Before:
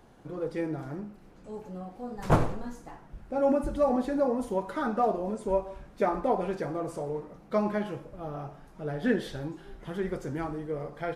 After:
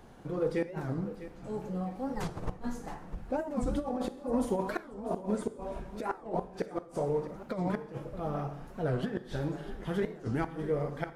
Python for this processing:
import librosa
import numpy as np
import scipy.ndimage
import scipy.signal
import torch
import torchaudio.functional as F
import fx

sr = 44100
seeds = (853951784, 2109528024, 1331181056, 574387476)

p1 = fx.low_shelf(x, sr, hz=94.0, db=2.0)
p2 = fx.over_compress(p1, sr, threshold_db=-29.0, ratio=-0.5)
p3 = fx.gate_flip(p2, sr, shuts_db=-20.0, range_db=-42)
p4 = p3 + fx.echo_feedback(p3, sr, ms=651, feedback_pct=39, wet_db=-14.0, dry=0)
p5 = fx.rev_gated(p4, sr, seeds[0], gate_ms=250, shape='falling', drr_db=11.5)
y = fx.record_warp(p5, sr, rpm=45.0, depth_cents=250.0)